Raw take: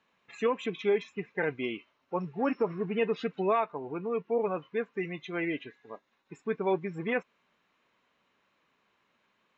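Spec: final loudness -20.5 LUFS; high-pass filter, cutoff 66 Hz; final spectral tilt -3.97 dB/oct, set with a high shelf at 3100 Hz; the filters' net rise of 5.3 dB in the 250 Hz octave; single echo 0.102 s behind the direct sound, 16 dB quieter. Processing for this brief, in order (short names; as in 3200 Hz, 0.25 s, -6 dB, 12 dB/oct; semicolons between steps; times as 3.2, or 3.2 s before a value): HPF 66 Hz; bell 250 Hz +7 dB; high shelf 3100 Hz -7.5 dB; echo 0.102 s -16 dB; gain +9 dB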